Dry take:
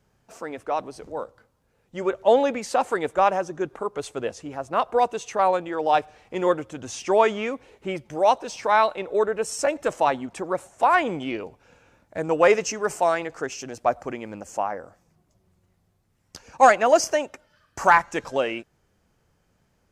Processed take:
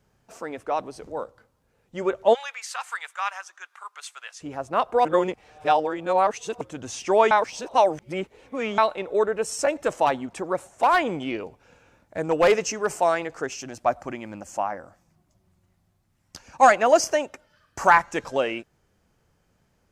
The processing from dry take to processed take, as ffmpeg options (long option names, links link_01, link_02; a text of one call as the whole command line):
ffmpeg -i in.wav -filter_complex "[0:a]asplit=3[link_01][link_02][link_03];[link_01]afade=type=out:start_time=2.33:duration=0.02[link_04];[link_02]highpass=frequency=1200:width=0.5412,highpass=frequency=1200:width=1.3066,afade=type=in:start_time=2.33:duration=0.02,afade=type=out:start_time=4.4:duration=0.02[link_05];[link_03]afade=type=in:start_time=4.4:duration=0.02[link_06];[link_04][link_05][link_06]amix=inputs=3:normalize=0,asettb=1/sr,asplit=3[link_07][link_08][link_09];[link_07]atrim=end=10.064[link_10];[link_08]atrim=start=10.06:end=12.87,asetpts=PTS-STARTPTS,afade=type=in:duration=0.004:curve=qsin,afade=type=out:start_time=2.806:duration=0.004:curve=qsin,asoftclip=type=hard:threshold=-12.5dB[link_11];[link_09]atrim=start=12.866[link_12];[link_10][link_11]acrossfade=duration=0.004:curve1=hsin:curve2=qsin[link_13];[link_13][link_12]acrossfade=duration=0.004:curve1=qsin:curve2=hsin,asettb=1/sr,asplit=3[link_14][link_15][link_16];[link_14]atrim=end=13.554[link_17];[link_15]atrim=start=13.55:end=16.72,asetpts=PTS-STARTPTS,afade=type=in:duration=0.004:curve=qsin,afade=type=out:start_time=3.166:duration=0.004:curve=qsin,equalizer=frequency=450:width_type=o:width=0.21:gain=-13.5[link_18];[link_16]atrim=start=16.716[link_19];[link_17][link_18]acrossfade=duration=0.004:curve1=hsin:curve2=qsin[link_20];[link_20][link_19]acrossfade=duration=0.004:curve1=qsin:curve2=hsin,asplit=5[link_21][link_22][link_23][link_24][link_25];[link_21]atrim=end=5.052[link_26];[link_22]atrim=start=5.048:end=6.612,asetpts=PTS-STARTPTS,areverse[link_27];[link_23]atrim=start=6.608:end=7.312[link_28];[link_24]atrim=start=7.308:end=8.782,asetpts=PTS-STARTPTS,areverse[link_29];[link_25]atrim=start=8.778[link_30];[link_26][link_27]acrossfade=duration=0.004:curve1=hsin:curve2=hsin[link_31];[link_31][link_28]acrossfade=duration=0.004:curve1=hsin:curve2=hsin[link_32];[link_32][link_29]acrossfade=duration=0.004:curve1=hsin:curve2=hsin[link_33];[link_33][link_30]acrossfade=duration=0.004:curve1=hsin:curve2=hsin" out.wav